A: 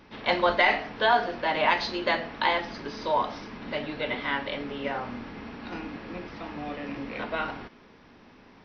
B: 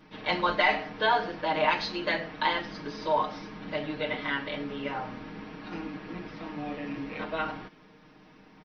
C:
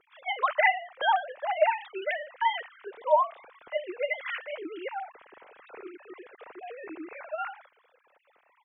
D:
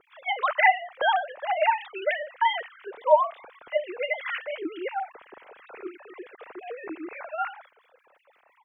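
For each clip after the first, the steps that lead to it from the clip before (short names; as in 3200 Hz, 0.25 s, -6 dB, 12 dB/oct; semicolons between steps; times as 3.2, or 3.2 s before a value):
bell 210 Hz +7 dB 0.36 oct; comb 6.5 ms, depth 97%; gain -5 dB
sine-wave speech
harmonic tremolo 5.8 Hz, depth 70%, crossover 1700 Hz; gain +7 dB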